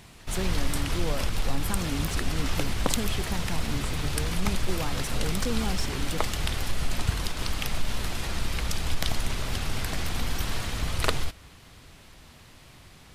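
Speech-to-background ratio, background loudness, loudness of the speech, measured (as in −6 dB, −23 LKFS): −4.5 dB, −31.0 LKFS, −35.5 LKFS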